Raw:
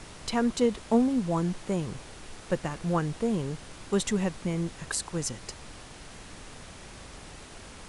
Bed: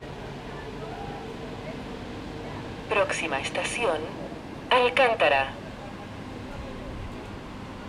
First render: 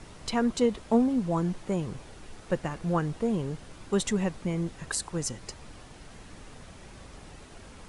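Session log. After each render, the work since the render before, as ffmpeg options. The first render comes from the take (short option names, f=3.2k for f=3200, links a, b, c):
-af "afftdn=nr=6:nf=-47"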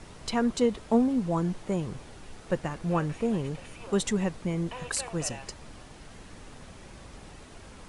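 -filter_complex "[1:a]volume=-21dB[a];[0:a][a]amix=inputs=2:normalize=0"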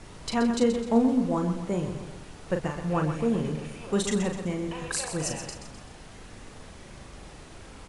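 -filter_complex "[0:a]asplit=2[a][b];[b]adelay=39,volume=-6dB[c];[a][c]amix=inputs=2:normalize=0,asplit=2[d][e];[e]aecho=0:1:128|256|384|512|640:0.355|0.17|0.0817|0.0392|0.0188[f];[d][f]amix=inputs=2:normalize=0"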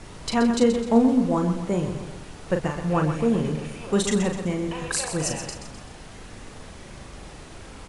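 -af "volume=4dB"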